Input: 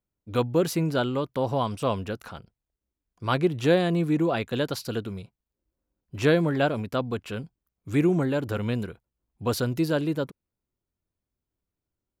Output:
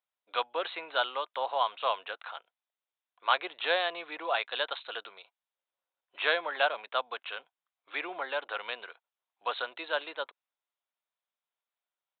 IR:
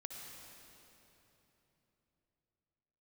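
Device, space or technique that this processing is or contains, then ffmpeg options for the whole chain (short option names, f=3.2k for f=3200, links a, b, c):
musical greeting card: -af "aresample=8000,aresample=44100,highpass=f=700:w=0.5412,highpass=f=700:w=1.3066,equalizer=f=4k:t=o:w=0.37:g=8,volume=1.5dB"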